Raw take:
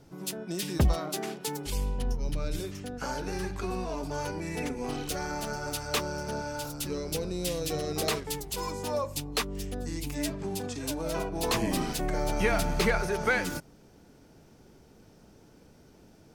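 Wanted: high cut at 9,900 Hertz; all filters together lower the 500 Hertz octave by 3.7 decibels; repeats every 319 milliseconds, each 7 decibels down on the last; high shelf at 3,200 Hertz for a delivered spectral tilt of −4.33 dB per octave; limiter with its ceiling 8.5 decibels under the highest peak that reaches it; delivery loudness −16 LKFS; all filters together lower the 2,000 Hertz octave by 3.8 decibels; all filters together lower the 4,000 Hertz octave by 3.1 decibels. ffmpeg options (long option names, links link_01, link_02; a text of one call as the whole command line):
ffmpeg -i in.wav -af "lowpass=9900,equalizer=frequency=500:width_type=o:gain=-4.5,equalizer=frequency=2000:width_type=o:gain=-5,highshelf=frequency=3200:gain=5,equalizer=frequency=4000:width_type=o:gain=-6.5,alimiter=limit=-23.5dB:level=0:latency=1,aecho=1:1:319|638|957|1276|1595:0.447|0.201|0.0905|0.0407|0.0183,volume=18.5dB" out.wav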